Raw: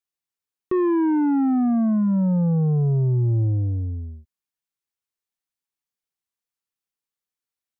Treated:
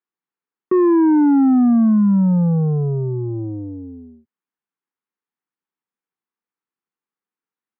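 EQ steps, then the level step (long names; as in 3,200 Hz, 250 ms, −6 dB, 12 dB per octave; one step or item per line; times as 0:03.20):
high-pass filter 170 Hz 24 dB per octave
low-pass filter 1,500 Hz 12 dB per octave
parametric band 610 Hz −14 dB 0.34 octaves
+7.0 dB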